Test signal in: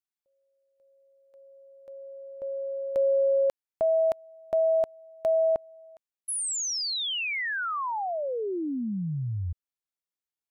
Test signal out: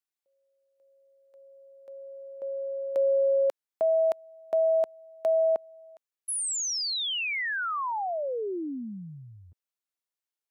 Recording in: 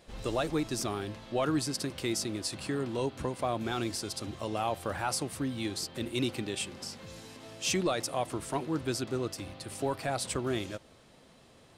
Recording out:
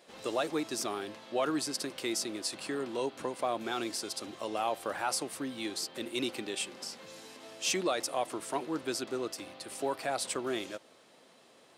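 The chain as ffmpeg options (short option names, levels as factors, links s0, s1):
-af "highpass=300"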